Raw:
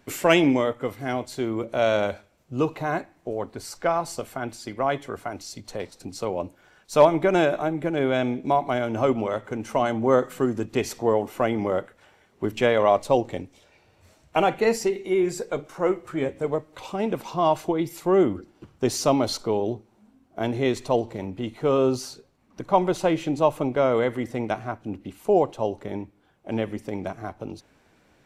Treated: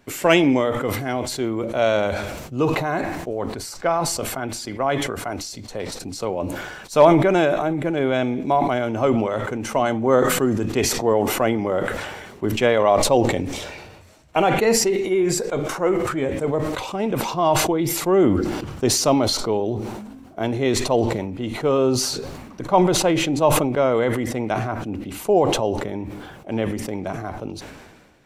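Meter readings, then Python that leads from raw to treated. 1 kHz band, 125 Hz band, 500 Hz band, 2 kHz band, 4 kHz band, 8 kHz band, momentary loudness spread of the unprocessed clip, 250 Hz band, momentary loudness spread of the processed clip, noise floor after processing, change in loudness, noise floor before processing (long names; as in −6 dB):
+3.5 dB, +6.0 dB, +3.0 dB, +4.5 dB, +8.0 dB, +12.0 dB, 14 LU, +4.5 dB, 13 LU, −43 dBFS, +3.5 dB, −61 dBFS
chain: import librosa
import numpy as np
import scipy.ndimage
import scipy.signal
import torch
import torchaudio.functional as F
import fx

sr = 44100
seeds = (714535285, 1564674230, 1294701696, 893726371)

y = fx.sustainer(x, sr, db_per_s=38.0)
y = F.gain(torch.from_numpy(y), 2.0).numpy()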